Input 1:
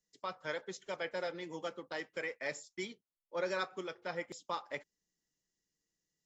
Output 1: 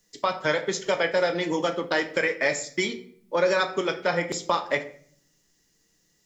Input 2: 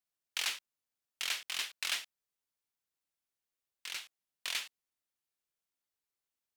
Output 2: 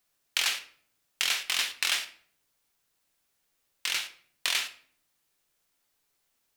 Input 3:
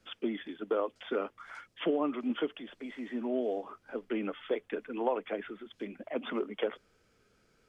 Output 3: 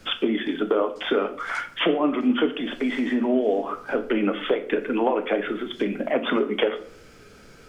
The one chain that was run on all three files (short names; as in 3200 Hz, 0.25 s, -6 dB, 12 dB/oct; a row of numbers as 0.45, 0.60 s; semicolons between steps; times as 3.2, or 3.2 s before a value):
compressor 2.5:1, threshold -42 dBFS; shoebox room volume 71 m³, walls mixed, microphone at 0.31 m; normalise peaks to -9 dBFS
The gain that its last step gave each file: +19.5, +14.5, +18.5 dB